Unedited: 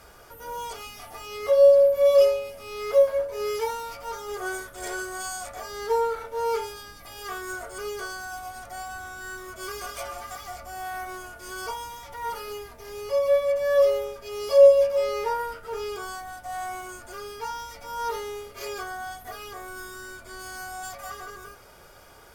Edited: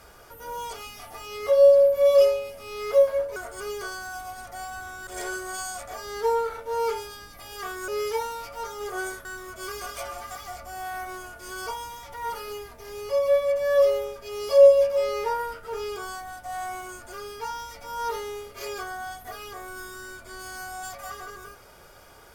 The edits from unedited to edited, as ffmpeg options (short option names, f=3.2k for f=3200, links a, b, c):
-filter_complex "[0:a]asplit=5[a][b][c][d][e];[a]atrim=end=3.362[f];[b]atrim=start=7.538:end=9.252[g];[c]atrim=start=4.728:end=7.542[h];[d]atrim=start=3.358:end=4.732[i];[e]atrim=start=9.248[j];[f][g]acrossfade=d=0.004:c1=hsin:c2=hsin[k];[k][h]acrossfade=d=0.004:c1=hsin:c2=hsin[l];[l][i]acrossfade=d=0.004:c1=hsin:c2=hsin[m];[m][j]acrossfade=d=0.004:c1=hsin:c2=hsin"